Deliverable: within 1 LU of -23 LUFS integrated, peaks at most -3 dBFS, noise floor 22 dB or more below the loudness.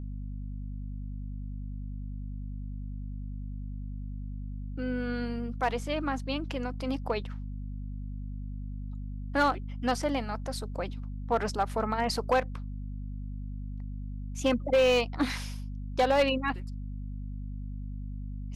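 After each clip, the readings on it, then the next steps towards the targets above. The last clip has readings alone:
clipped 0.3%; flat tops at -18.0 dBFS; hum 50 Hz; harmonics up to 250 Hz; hum level -34 dBFS; loudness -33.0 LUFS; peak -18.0 dBFS; loudness target -23.0 LUFS
-> clip repair -18 dBFS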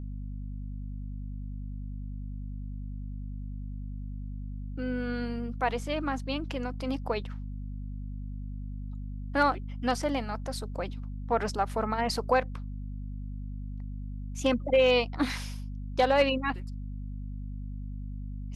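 clipped 0.0%; hum 50 Hz; harmonics up to 250 Hz; hum level -34 dBFS
-> notches 50/100/150/200/250 Hz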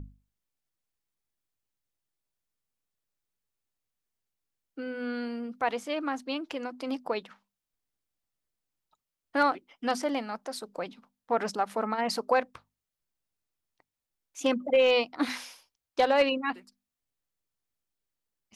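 hum none; loudness -29.5 LUFS; peak -12.0 dBFS; loudness target -23.0 LUFS
-> gain +6.5 dB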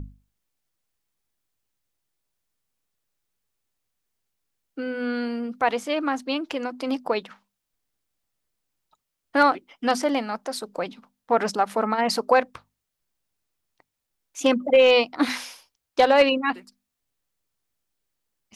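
loudness -23.0 LUFS; peak -5.5 dBFS; noise floor -82 dBFS

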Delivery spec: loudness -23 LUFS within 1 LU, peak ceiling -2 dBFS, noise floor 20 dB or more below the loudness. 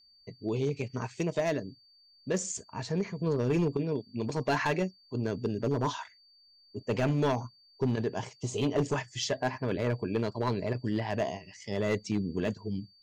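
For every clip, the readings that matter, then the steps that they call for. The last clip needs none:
clipped 1.3%; flat tops at -21.5 dBFS; steady tone 4600 Hz; tone level -59 dBFS; loudness -32.0 LUFS; peak -21.5 dBFS; loudness target -23.0 LUFS
-> clip repair -21.5 dBFS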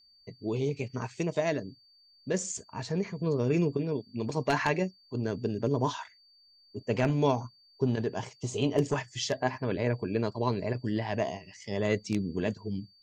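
clipped 0.0%; steady tone 4600 Hz; tone level -59 dBFS
-> notch 4600 Hz, Q 30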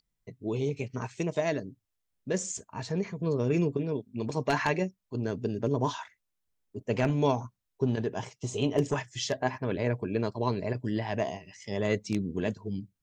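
steady tone none; loudness -31.0 LUFS; peak -12.5 dBFS; loudness target -23.0 LUFS
-> gain +8 dB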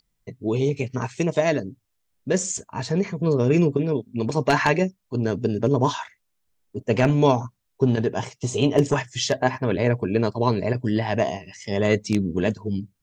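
loudness -23.0 LUFS; peak -4.5 dBFS; noise floor -74 dBFS

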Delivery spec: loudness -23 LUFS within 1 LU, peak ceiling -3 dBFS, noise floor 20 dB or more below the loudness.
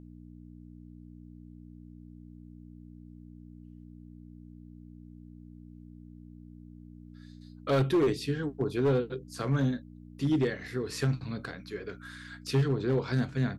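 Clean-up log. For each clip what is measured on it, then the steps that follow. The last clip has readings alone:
clipped 0.8%; flat tops at -20.5 dBFS; hum 60 Hz; harmonics up to 300 Hz; hum level -46 dBFS; loudness -30.5 LUFS; peak -20.5 dBFS; loudness target -23.0 LUFS
-> clip repair -20.5 dBFS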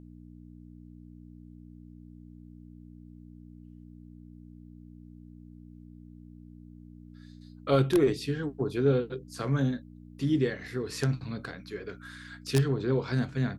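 clipped 0.0%; hum 60 Hz; harmonics up to 300 Hz; hum level -46 dBFS
-> de-hum 60 Hz, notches 5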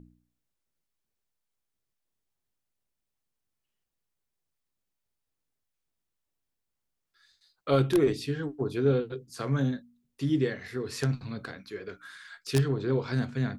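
hum none; loudness -29.0 LUFS; peak -11.5 dBFS; loudness target -23.0 LUFS
-> gain +6 dB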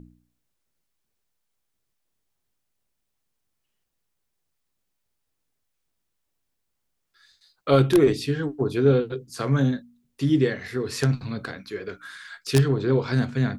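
loudness -23.0 LUFS; peak -5.5 dBFS; noise floor -78 dBFS

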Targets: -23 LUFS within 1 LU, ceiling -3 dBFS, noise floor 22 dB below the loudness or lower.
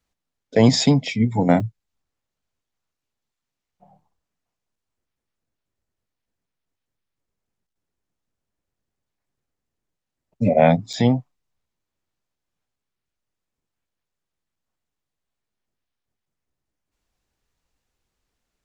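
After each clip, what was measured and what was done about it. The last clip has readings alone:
dropouts 2; longest dropout 4.6 ms; loudness -19.0 LUFS; peak -1.5 dBFS; loudness target -23.0 LUFS
-> interpolate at 1.6/10.93, 4.6 ms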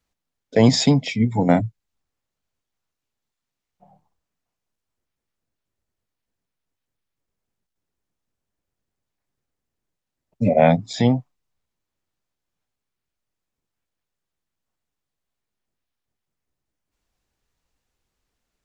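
dropouts 0; loudness -19.0 LUFS; peak -1.5 dBFS; loudness target -23.0 LUFS
-> gain -4 dB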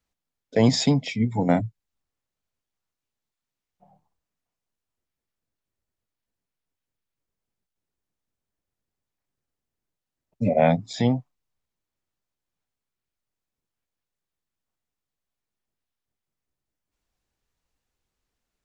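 loudness -23.0 LUFS; peak -5.5 dBFS; noise floor -87 dBFS

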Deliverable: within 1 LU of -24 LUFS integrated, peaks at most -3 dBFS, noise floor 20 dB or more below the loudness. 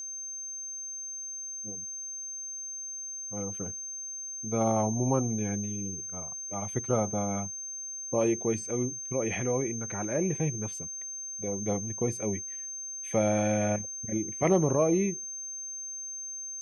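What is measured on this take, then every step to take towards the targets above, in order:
ticks 19/s; steady tone 6300 Hz; tone level -36 dBFS; loudness -31.0 LUFS; peak -11.0 dBFS; loudness target -24.0 LUFS
-> de-click; notch 6300 Hz, Q 30; gain +7 dB

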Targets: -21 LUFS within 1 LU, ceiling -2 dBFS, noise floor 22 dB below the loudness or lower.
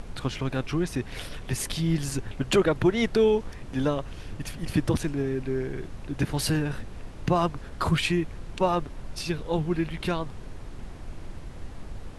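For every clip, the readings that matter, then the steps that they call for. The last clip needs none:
noise floor -41 dBFS; noise floor target -50 dBFS; loudness -28.0 LUFS; peak -10.5 dBFS; loudness target -21.0 LUFS
-> noise print and reduce 9 dB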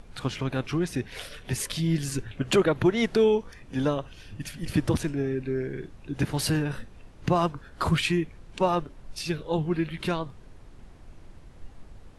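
noise floor -50 dBFS; loudness -27.5 LUFS; peak -11.0 dBFS; loudness target -21.0 LUFS
-> gain +6.5 dB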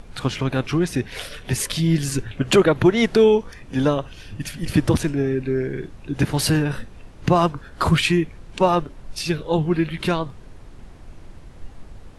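loudness -21.0 LUFS; peak -4.5 dBFS; noise floor -43 dBFS

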